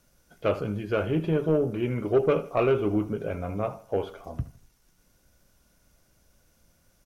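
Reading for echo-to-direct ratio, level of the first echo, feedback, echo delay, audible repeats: -16.5 dB, -17.0 dB, 38%, 79 ms, 3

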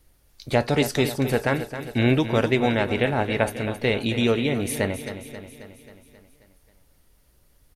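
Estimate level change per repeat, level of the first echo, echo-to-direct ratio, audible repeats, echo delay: -4.5 dB, -11.0 dB, -9.0 dB, 6, 0.268 s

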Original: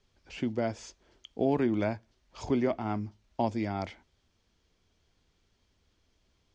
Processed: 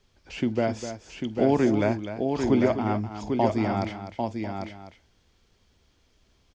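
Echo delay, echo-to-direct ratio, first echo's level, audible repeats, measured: 46 ms, -4.0 dB, -19.5 dB, 5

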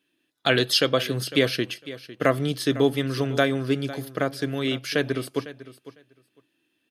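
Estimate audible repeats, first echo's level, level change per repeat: 2, -16.0 dB, -16.0 dB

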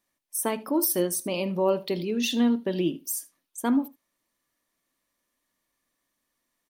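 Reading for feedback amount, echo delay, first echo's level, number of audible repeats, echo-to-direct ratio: no steady repeat, 77 ms, -20.0 dB, 1, -20.0 dB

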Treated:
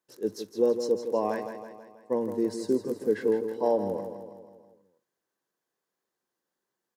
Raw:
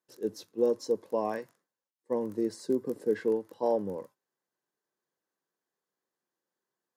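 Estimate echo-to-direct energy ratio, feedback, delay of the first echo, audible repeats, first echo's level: -7.5 dB, 54%, 0.162 s, 5, -9.0 dB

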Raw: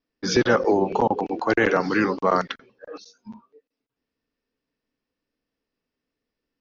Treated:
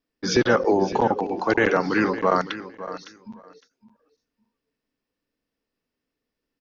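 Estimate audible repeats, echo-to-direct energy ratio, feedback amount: 2, -14.5 dB, 16%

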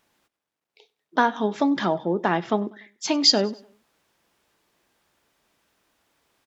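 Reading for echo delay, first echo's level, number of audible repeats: 97 ms, -23.0 dB, 2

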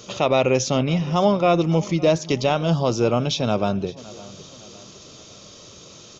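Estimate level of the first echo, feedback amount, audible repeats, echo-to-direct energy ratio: -20.0 dB, 46%, 3, -19.0 dB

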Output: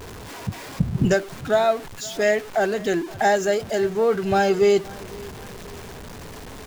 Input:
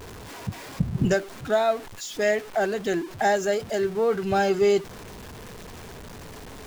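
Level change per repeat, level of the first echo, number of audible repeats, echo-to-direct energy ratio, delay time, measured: -6.5 dB, -22.0 dB, 2, -21.0 dB, 0.521 s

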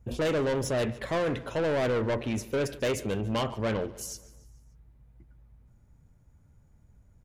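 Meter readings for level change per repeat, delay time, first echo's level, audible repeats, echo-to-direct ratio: -6.0 dB, 0.145 s, -19.0 dB, 3, -17.5 dB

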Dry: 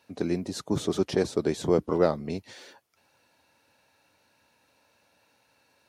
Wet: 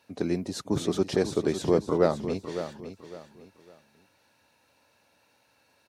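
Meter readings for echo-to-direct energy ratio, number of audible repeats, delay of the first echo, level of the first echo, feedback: -10.0 dB, 3, 0.556 s, -10.5 dB, 30%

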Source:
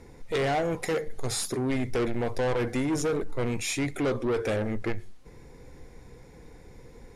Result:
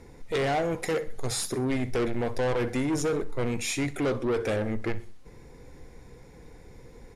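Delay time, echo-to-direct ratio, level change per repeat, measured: 63 ms, -17.5 dB, -7.5 dB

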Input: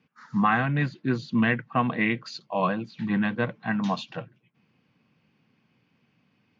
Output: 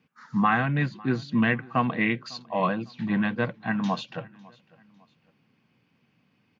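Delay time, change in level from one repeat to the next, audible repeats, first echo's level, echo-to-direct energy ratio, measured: 0.552 s, -8.5 dB, 2, -23.5 dB, -23.0 dB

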